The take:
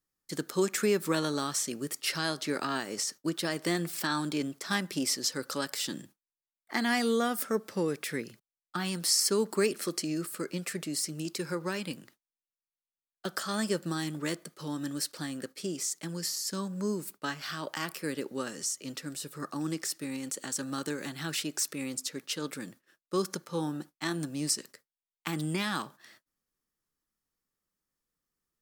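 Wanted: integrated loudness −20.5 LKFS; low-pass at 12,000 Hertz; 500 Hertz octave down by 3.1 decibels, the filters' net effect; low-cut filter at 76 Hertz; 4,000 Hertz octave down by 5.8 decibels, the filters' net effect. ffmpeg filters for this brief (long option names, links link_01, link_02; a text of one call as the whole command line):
ffmpeg -i in.wav -af "highpass=76,lowpass=12000,equalizer=frequency=500:width_type=o:gain=-4,equalizer=frequency=4000:width_type=o:gain=-8,volume=14.5dB" out.wav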